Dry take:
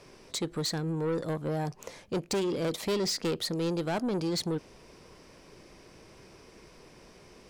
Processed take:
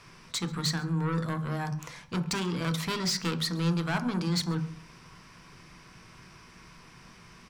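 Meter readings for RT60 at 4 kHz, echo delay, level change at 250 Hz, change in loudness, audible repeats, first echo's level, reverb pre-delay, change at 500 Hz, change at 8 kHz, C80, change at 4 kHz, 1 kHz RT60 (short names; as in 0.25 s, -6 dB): 0.35 s, 0.135 s, +1.5 dB, +1.0 dB, 1, -24.0 dB, 3 ms, -7.0 dB, +1.5 dB, 17.0 dB, +2.5 dB, 0.45 s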